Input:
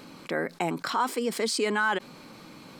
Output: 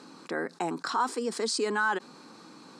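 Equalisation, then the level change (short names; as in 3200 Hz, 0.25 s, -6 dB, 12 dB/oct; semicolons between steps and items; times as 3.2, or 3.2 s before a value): speaker cabinet 240–9200 Hz, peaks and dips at 590 Hz -8 dB, 2200 Hz -10 dB, 3100 Hz -8 dB; 0.0 dB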